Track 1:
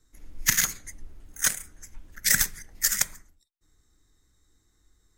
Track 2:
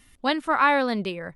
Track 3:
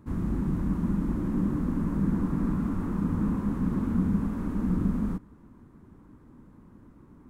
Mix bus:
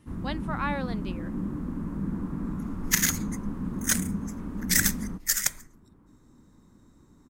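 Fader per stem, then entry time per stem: -1.5 dB, -11.5 dB, -5.0 dB; 2.45 s, 0.00 s, 0.00 s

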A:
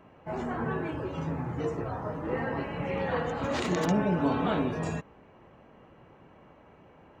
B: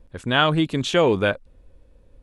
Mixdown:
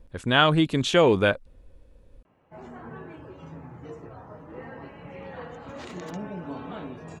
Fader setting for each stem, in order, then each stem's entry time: -9.5 dB, -0.5 dB; 2.25 s, 0.00 s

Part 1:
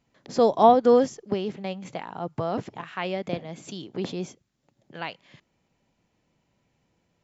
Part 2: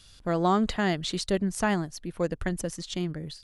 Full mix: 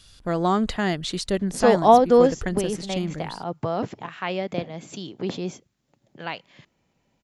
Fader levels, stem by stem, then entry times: +2.0 dB, +2.0 dB; 1.25 s, 0.00 s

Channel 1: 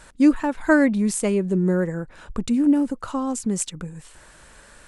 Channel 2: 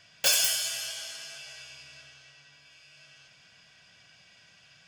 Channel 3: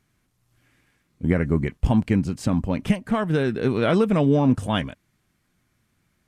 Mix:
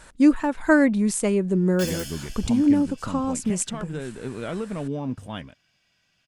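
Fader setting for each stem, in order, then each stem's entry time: -0.5 dB, -11.0 dB, -11.0 dB; 0.00 s, 1.55 s, 0.60 s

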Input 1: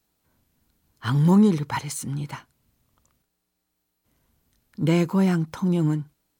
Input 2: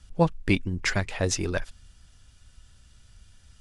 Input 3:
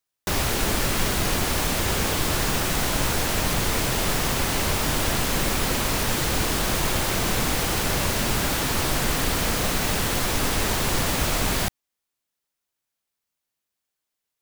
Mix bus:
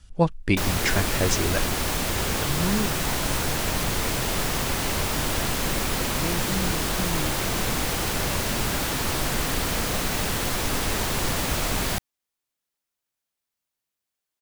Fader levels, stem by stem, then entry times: -10.0 dB, +1.0 dB, -2.0 dB; 1.35 s, 0.00 s, 0.30 s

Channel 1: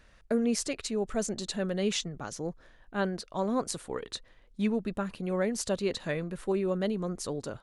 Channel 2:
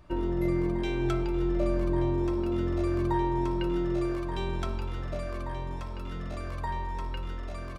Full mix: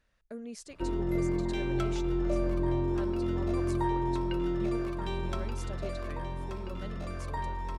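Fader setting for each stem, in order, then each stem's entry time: -14.5 dB, -2.0 dB; 0.00 s, 0.70 s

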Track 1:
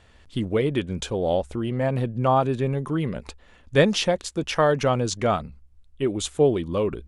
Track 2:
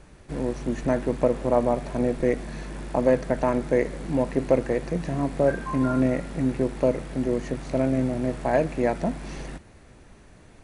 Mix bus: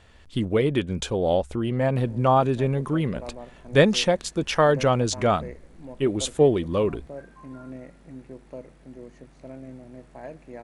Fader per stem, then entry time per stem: +1.0 dB, -17.5 dB; 0.00 s, 1.70 s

